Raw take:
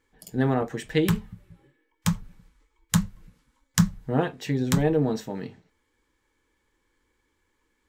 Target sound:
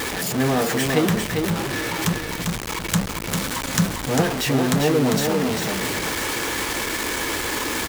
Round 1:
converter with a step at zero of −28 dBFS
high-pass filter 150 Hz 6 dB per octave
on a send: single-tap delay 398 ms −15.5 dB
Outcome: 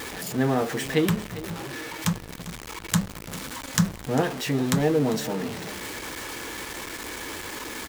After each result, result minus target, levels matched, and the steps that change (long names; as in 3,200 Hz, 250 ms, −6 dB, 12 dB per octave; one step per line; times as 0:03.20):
echo-to-direct −11 dB; converter with a step at zero: distortion −7 dB
change: single-tap delay 398 ms −4.5 dB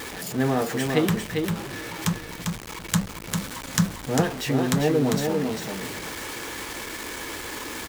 converter with a step at zero: distortion −7 dB
change: converter with a step at zero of −19 dBFS